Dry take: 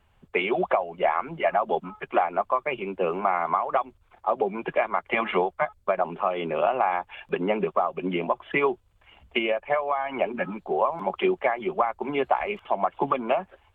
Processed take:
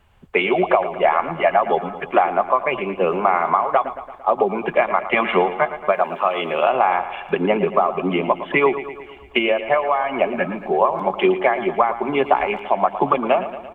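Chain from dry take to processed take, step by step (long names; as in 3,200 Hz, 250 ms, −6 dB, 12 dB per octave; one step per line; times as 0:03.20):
0:05.92–0:06.70: spectral tilt +2.5 dB per octave
repeating echo 113 ms, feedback 59%, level −12.5 dB
level +6.5 dB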